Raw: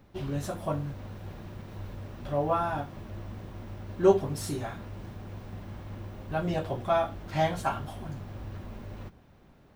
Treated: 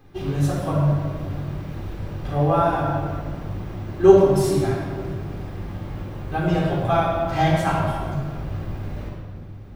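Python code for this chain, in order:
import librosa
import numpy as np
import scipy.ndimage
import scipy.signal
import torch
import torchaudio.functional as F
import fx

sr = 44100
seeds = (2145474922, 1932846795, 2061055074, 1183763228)

y = fx.room_shoebox(x, sr, seeds[0], volume_m3=2800.0, walls='mixed', distance_m=3.8)
y = y * 10.0 ** (2.5 / 20.0)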